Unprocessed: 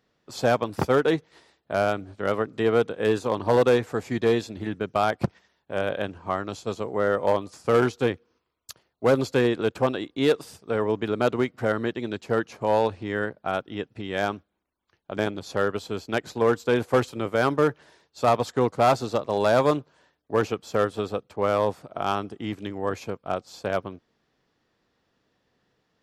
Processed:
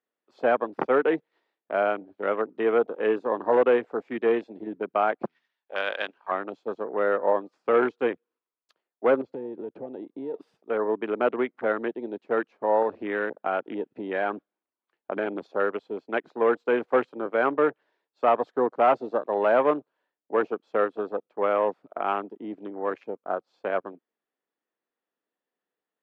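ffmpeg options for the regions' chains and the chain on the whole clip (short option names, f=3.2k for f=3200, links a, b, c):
-filter_complex "[0:a]asettb=1/sr,asplit=3[a][b][c];[a]atrim=end=5.254[d];[b]atrim=start=5.25:end=6.31,asetpts=PTS-STARTPTS,afade=t=in:d=0.004:c=qsin,afade=t=out:st=1.056:d=0.004:c=qsin,tiltshelf=f=930:g=-10,bandreject=f=82.37:t=h:w=4,bandreject=f=164.74:t=h:w=4,bandreject=f=247.11:t=h:w=4,bandreject=f=329.48:t=h:w=4,bandreject=f=411.85:t=h:w=4[e];[c]atrim=start=6.306[f];[d][e]acrossfade=d=0.004:c1=hsin:c2=qsin[g];[g][f]acrossfade=d=0.004:c1=qsin:c2=hsin,asettb=1/sr,asplit=3[h][i][j];[h]atrim=end=9.214[k];[i]atrim=start=9.21:end=10.34,asetpts=PTS-STARTPTS,afade=t=in:d=0.004:c=qsin,afade=t=out:st=1.126:d=0.004:c=qsin,aemphasis=mode=reproduction:type=bsi,acompressor=threshold=-30dB:ratio=4:attack=3.2:release=140:knee=1:detection=peak[l];[j]atrim=start=10.336[m];[k][l]acrossfade=d=0.004:c1=hsin:c2=qsin[n];[n][m]acrossfade=d=0.004:c1=qsin:c2=hsin,asettb=1/sr,asplit=3[o][p][q];[o]atrim=end=12.824[r];[p]atrim=start=12.82:end=15.47,asetpts=PTS-STARTPTS,afade=t=in:d=0.004:c=qsin,afade=t=out:st=2.646:d=0.004:c=qsin,aeval=exprs='0.316*sin(PI/2*1.58*val(0)/0.316)':c=same,acompressor=threshold=-25dB:ratio=2:attack=3.2:release=140:knee=1:detection=peak[s];[q]atrim=start=15.466[t];[r][s]acrossfade=d=0.004:c1=hsin:c2=qsin[u];[u][t]acrossfade=d=0.004:c1=qsin:c2=hsin,highpass=150,afwtdn=0.0178,acrossover=split=230 3700:gain=0.0708 1 0.0708[v][w][x];[v][w][x]amix=inputs=3:normalize=0"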